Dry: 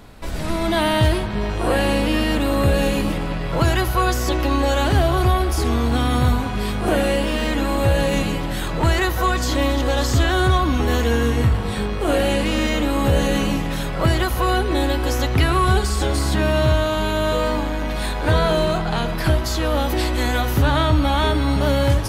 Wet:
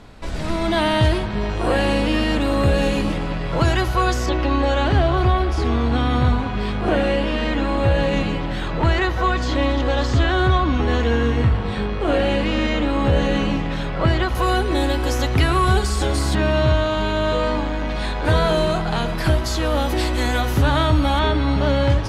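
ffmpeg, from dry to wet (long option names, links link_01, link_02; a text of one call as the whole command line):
ffmpeg -i in.wav -af "asetnsamples=nb_out_samples=441:pad=0,asendcmd='4.26 lowpass f 4000;14.35 lowpass f 11000;16.35 lowpass f 5400;18.25 lowpass f 11000;21.19 lowpass f 4700',lowpass=7400" out.wav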